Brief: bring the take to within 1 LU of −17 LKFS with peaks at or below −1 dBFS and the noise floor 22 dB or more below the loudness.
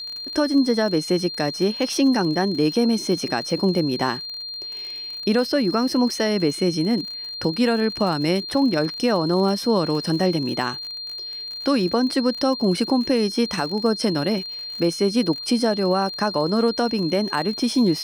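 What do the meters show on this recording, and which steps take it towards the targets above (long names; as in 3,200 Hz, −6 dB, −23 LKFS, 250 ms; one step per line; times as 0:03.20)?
crackle rate 50 per second; interfering tone 4,200 Hz; level of the tone −30 dBFS; integrated loudness −22.0 LKFS; sample peak −9.5 dBFS; target loudness −17.0 LKFS
→ click removal
notch filter 4,200 Hz, Q 30
level +5 dB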